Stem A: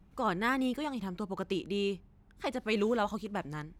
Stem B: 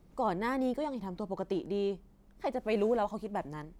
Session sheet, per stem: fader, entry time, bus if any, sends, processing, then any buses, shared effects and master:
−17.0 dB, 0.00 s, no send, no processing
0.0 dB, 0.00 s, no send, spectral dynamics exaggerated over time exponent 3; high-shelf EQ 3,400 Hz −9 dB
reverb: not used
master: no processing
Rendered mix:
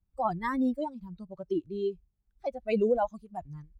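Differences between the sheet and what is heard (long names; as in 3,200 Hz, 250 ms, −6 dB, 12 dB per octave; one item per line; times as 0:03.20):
stem A −17.0 dB → −25.5 dB
stem B 0.0 dB → +7.5 dB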